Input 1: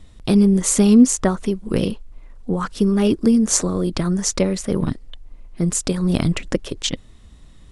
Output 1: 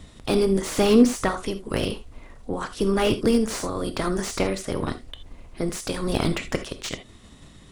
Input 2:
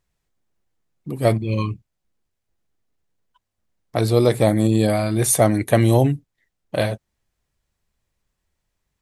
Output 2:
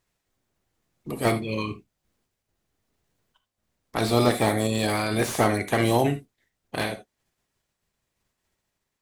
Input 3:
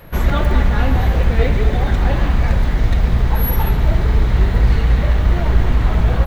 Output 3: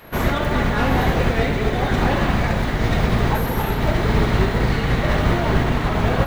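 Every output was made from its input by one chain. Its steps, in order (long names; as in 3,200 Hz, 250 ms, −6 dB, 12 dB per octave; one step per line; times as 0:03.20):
ceiling on every frequency bin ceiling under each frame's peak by 16 dB
amplitude tremolo 0.95 Hz, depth 28%
reverb whose tail is shaped and stops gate 100 ms flat, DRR 9 dB
slew-rate limiting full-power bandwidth 280 Hz
level −4 dB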